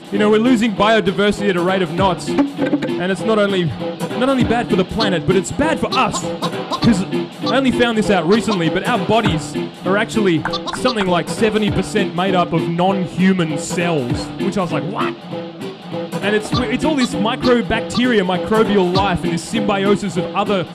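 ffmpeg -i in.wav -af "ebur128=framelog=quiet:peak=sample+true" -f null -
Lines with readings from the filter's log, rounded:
Integrated loudness:
  I:         -17.0 LUFS
  Threshold: -27.1 LUFS
Loudness range:
  LRA:         2.9 LU
  Threshold: -37.3 LUFS
  LRA low:   -19.1 LUFS
  LRA high:  -16.2 LUFS
Sample peak:
  Peak:       -4.9 dBFS
True peak:
  Peak:       -4.9 dBFS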